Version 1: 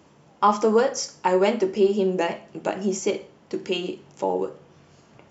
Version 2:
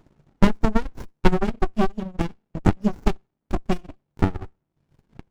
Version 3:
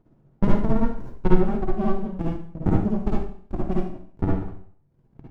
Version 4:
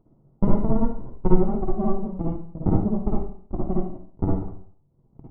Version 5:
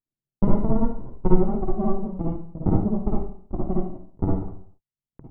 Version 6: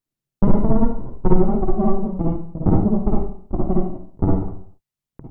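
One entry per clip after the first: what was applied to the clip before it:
transient shaper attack +11 dB, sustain -10 dB; reverb removal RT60 1.7 s; sliding maximum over 65 samples; trim -2 dB
tilt shelf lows +8.5 dB, about 1.5 kHz; reverberation RT60 0.55 s, pre-delay 48 ms, DRR -5 dB; trim -13.5 dB
Savitzky-Golay filter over 65 samples
gate -49 dBFS, range -38 dB
saturation -9 dBFS, distortion -15 dB; trim +6 dB

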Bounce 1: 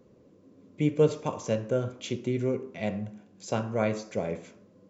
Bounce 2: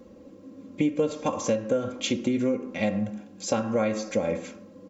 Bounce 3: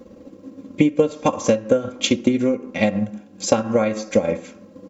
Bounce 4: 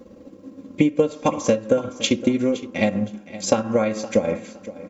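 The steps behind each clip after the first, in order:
comb 3.7 ms, depth 73%; compression 6:1, threshold -29 dBFS, peak gain reduction 12.5 dB; trim +7.5 dB
transient shaper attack +5 dB, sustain -5 dB; trim +5 dB
feedback delay 516 ms, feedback 24%, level -16 dB; trim -1.5 dB

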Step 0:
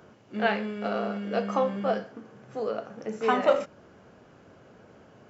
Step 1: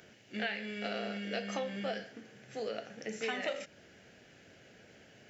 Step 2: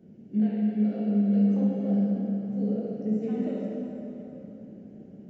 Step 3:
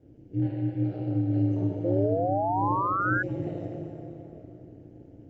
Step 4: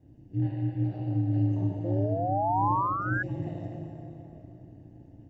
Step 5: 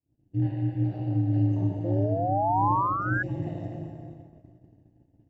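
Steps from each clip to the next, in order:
FFT filter 740 Hz 0 dB, 1.1 kHz -10 dB, 1.8 kHz +12 dB; compression 6:1, threshold -26 dBFS, peak gain reduction 11 dB; trim -6.5 dB
FFT filter 120 Hz 0 dB, 190 Hz +15 dB, 1.6 kHz -24 dB; plate-style reverb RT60 3.6 s, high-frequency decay 0.7×, DRR -5.5 dB
painted sound rise, 1.84–3.23 s, 420–1600 Hz -24 dBFS; ring modulator 93 Hz
comb 1.1 ms, depth 60%; trim -2.5 dB
expander -39 dBFS; trim +2 dB

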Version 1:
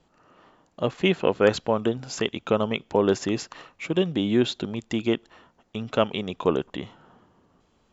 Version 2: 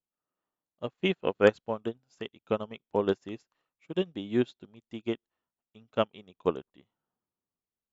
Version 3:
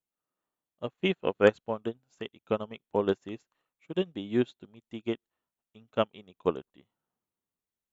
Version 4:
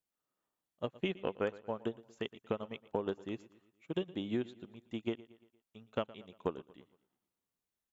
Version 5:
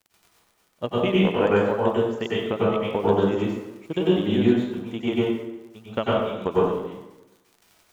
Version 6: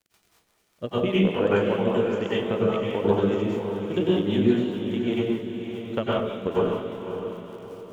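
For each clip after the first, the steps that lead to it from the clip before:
upward expansion 2.5:1, over -38 dBFS
peaking EQ 5 kHz -8 dB 0.25 oct
compression 10:1, threshold -31 dBFS, peak gain reduction 17 dB; feedback delay 116 ms, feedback 49%, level -19.5 dB
crackle 34 per s -50 dBFS; plate-style reverb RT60 0.99 s, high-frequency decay 0.6×, pre-delay 85 ms, DRR -7 dB; trim +8.5 dB
rotary cabinet horn 5 Hz; on a send: echo that smears into a reverb 558 ms, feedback 44%, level -7.5 dB

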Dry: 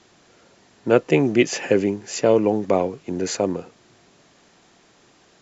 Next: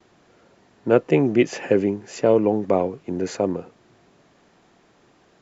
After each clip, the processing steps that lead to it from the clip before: gate with hold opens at -49 dBFS; treble shelf 2.9 kHz -11 dB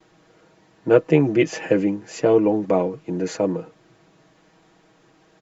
comb 6.3 ms, depth 74%; trim -1 dB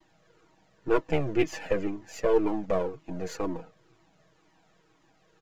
partial rectifier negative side -7 dB; Shepard-style flanger falling 2 Hz; trim -1 dB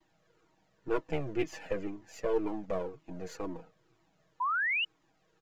painted sound rise, 4.40–4.85 s, 950–3000 Hz -23 dBFS; trim -7 dB

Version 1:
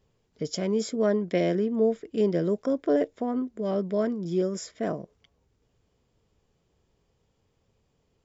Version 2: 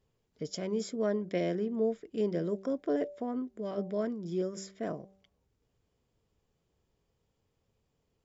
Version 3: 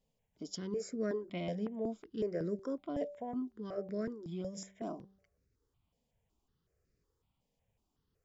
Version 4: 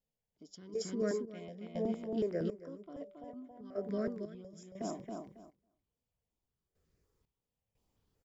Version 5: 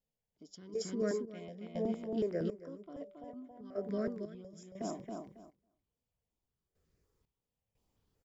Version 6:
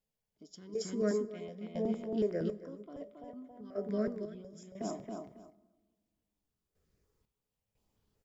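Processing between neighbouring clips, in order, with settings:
de-hum 193.4 Hz, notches 4; trim -6.5 dB
stepped phaser 5.4 Hz 360–3200 Hz; trim -1.5 dB
feedback delay 274 ms, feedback 22%, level -4 dB; trance gate "...xx..xxx.." 60 bpm -12 dB; trim +1 dB
no audible change
feedback comb 210 Hz, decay 0.22 s, harmonics all, mix 50%; on a send at -21 dB: reverberation RT60 1.4 s, pre-delay 77 ms; on the sum: trim +5.5 dB

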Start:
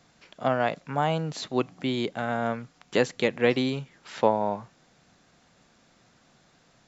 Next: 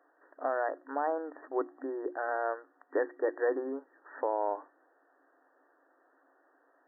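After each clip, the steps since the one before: hum notches 60/120/180/240/300/360 Hz; FFT band-pass 260–1900 Hz; peak limiter -17 dBFS, peak gain reduction 9 dB; trim -3 dB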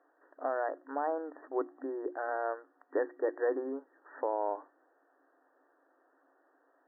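distance through air 450 m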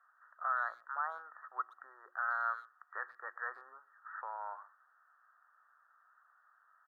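ladder high-pass 1.2 kHz, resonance 75%; speakerphone echo 120 ms, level -22 dB; trim +8 dB

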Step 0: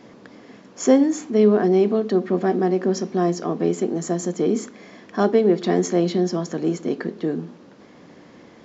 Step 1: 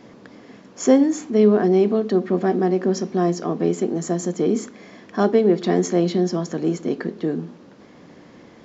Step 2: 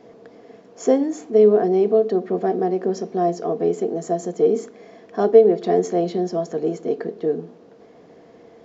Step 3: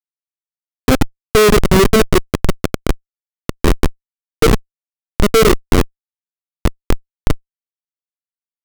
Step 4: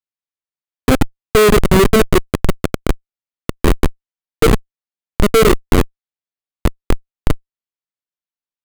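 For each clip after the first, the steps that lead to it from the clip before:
bass shelf 130 Hz +4 dB
small resonant body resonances 460/670 Hz, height 15 dB, ringing for 45 ms; trim -7 dB
resonant low shelf 550 Hz +9.5 dB, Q 1.5; Schmitt trigger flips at -3.5 dBFS; trim +2 dB
careless resampling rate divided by 4×, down filtered, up hold

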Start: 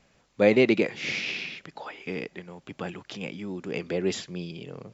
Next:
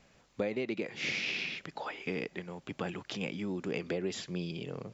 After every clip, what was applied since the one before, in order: compression 16:1, threshold -30 dBFS, peak gain reduction 17 dB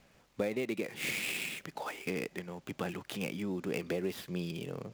dead-time distortion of 0.063 ms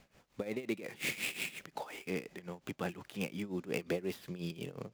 tremolo 5.6 Hz, depth 82%; trim +1 dB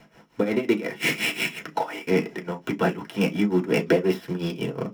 in parallel at -9 dB: small samples zeroed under -37 dBFS; on the sum: reverberation, pre-delay 3 ms, DRR 1.5 dB; trim +4 dB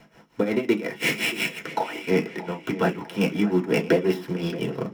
tape echo 626 ms, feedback 54%, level -14.5 dB, low-pass 4.9 kHz

